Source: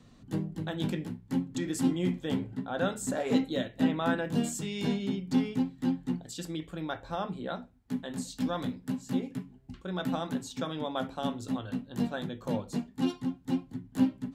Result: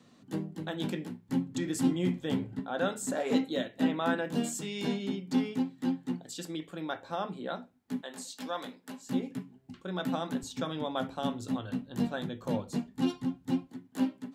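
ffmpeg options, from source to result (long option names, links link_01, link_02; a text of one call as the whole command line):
ffmpeg -i in.wav -af "asetnsamples=nb_out_samples=441:pad=0,asendcmd='1.29 highpass f 81;2.59 highpass f 200;8.01 highpass f 470;9.09 highpass f 150;10.43 highpass f 67;13.67 highpass f 280',highpass=190" out.wav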